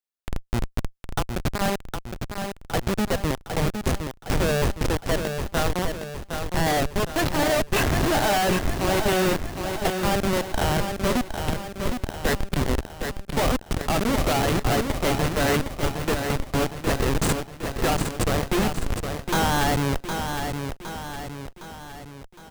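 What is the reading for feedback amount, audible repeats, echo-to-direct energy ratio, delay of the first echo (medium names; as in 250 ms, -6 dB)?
51%, 5, -5.0 dB, 762 ms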